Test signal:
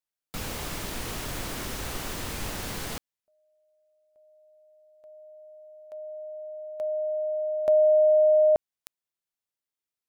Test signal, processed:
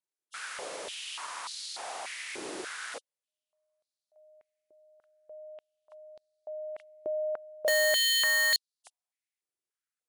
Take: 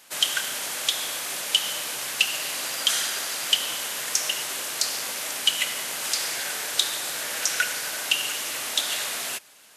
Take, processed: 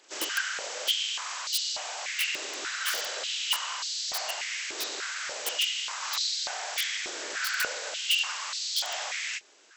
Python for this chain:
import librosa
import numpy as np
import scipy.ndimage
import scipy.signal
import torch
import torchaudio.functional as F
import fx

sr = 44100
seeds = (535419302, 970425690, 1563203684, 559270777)

y = fx.freq_compress(x, sr, knee_hz=2700.0, ratio=1.5)
y = (np.mod(10.0 ** (18.0 / 20.0) * y + 1.0, 2.0) - 1.0) / 10.0 ** (18.0 / 20.0)
y = fx.filter_held_highpass(y, sr, hz=3.4, low_hz=360.0, high_hz=4200.0)
y = F.gain(torch.from_numpy(y), -6.0).numpy()